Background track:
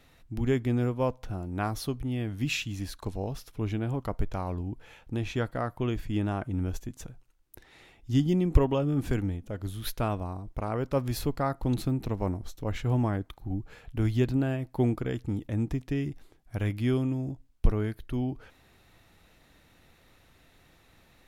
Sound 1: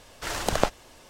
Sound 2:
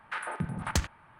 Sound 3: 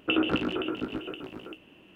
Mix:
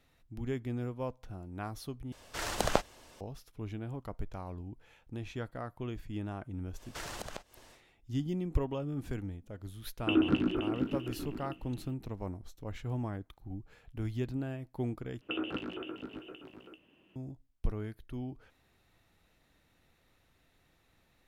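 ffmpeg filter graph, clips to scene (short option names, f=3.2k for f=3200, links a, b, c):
-filter_complex "[1:a]asplit=2[a][b];[3:a]asplit=2[c][d];[0:a]volume=-9.5dB[e];[b]acompressor=threshold=-31dB:ratio=12:attack=7.5:release=162:knee=1:detection=rms[f];[c]lowshelf=f=380:t=q:w=1.5:g=7[g];[e]asplit=3[h][i][j];[h]atrim=end=2.124[k];[a]atrim=end=1.09,asetpts=PTS-STARTPTS,volume=-5dB[l];[i]atrim=start=3.206:end=15.214[m];[d]atrim=end=1.95,asetpts=PTS-STARTPTS,volume=-10.5dB[n];[j]atrim=start=17.156[o];[f]atrim=end=1.09,asetpts=PTS-STARTPTS,volume=-6dB,afade=t=in:d=0.1,afade=t=out:st=0.99:d=0.1,adelay=6730[p];[g]atrim=end=1.95,asetpts=PTS-STARTPTS,volume=-7dB,afade=t=in:d=0.004:c=hsin,afade=t=out:st=1.946:d=0.004:c=hsin,adelay=9990[q];[k][l]acrossfade=d=0.004:c1=hsin:c2=hsin[r];[r][m]acrossfade=d=0.004:c1=hsin:c2=hsin[s];[s][n]acrossfade=d=0.004:c1=hsin:c2=hsin[t];[t][o]acrossfade=d=0.004:c1=hsin:c2=hsin[u];[u][p][q]amix=inputs=3:normalize=0"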